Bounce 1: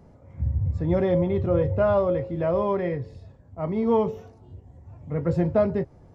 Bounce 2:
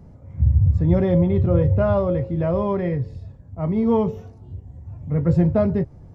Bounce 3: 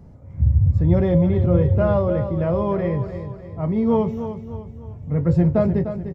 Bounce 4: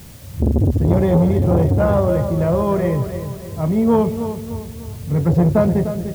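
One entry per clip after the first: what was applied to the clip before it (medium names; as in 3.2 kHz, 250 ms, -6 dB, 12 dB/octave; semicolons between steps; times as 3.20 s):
tone controls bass +9 dB, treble +1 dB
feedback delay 300 ms, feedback 43%, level -10 dB
in parallel at -11 dB: word length cut 6-bit, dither triangular; on the sum: reverberation RT60 2.9 s, pre-delay 15 ms, DRR 19.5 dB; transformer saturation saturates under 340 Hz; trim +2 dB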